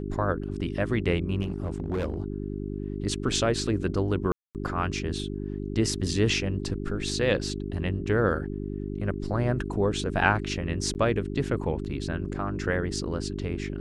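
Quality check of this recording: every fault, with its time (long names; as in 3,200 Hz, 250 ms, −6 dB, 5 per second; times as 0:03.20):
mains hum 50 Hz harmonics 8 −33 dBFS
0:01.42–0:02.18: clipping −24.5 dBFS
0:04.32–0:04.55: drop-out 228 ms
0:10.94–0:10.95: drop-out 9.7 ms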